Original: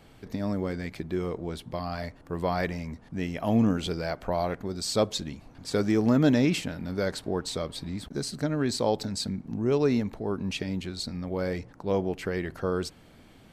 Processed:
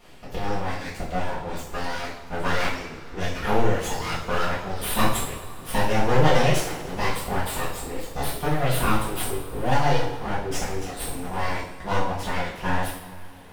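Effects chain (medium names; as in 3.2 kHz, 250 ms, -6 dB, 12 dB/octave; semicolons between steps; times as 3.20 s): reverb removal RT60 1.1 s; full-wave rectifier; two-slope reverb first 0.58 s, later 3.5 s, from -19 dB, DRR -9 dB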